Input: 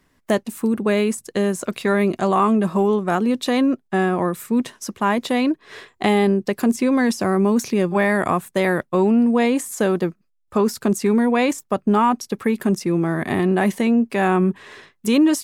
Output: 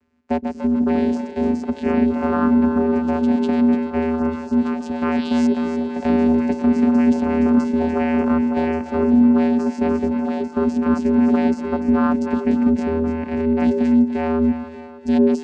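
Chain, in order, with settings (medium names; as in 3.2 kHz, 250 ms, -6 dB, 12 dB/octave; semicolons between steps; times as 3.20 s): ever faster or slower copies 176 ms, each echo +2 st, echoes 3, each echo -6 dB; painted sound rise, 5.01–5.47 s, 1.5–6.2 kHz -27 dBFS; vocoder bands 8, square 80.4 Hz; on a send: two-band feedback delay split 380 Hz, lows 119 ms, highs 294 ms, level -10.5 dB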